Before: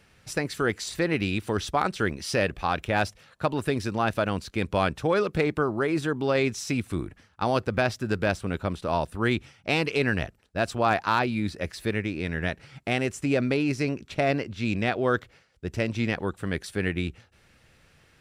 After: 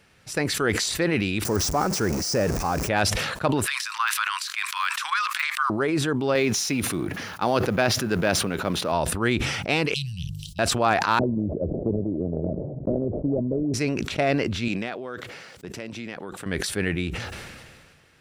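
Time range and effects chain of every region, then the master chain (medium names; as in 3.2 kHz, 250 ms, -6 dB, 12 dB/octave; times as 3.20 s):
1.45–2.89 s: jump at every zero crossing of -27.5 dBFS + de-esser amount 95% + resonant high shelf 4.4 kHz +8.5 dB, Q 3
3.66–5.70 s: de-esser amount 70% + steep high-pass 1 kHz 72 dB/octave + transient shaper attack +5 dB, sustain +11 dB
6.35–8.92 s: companding laws mixed up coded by mu + high-pass 130 Hz + band-stop 7.9 kHz, Q 5.4
9.94–10.59 s: Chebyshev band-stop 170–3000 Hz, order 5 + hum notches 50/100/150/200/250/300/350/400 Hz
11.19–13.74 s: decimation with a swept rate 24× 1.9 Hz + Chebyshev low-pass 630 Hz, order 5 + three bands compressed up and down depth 100%
14.68–16.46 s: high-pass 160 Hz + compression 5:1, threshold -33 dBFS
whole clip: bass shelf 76 Hz -7.5 dB; decay stretcher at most 32 dB/s; trim +1.5 dB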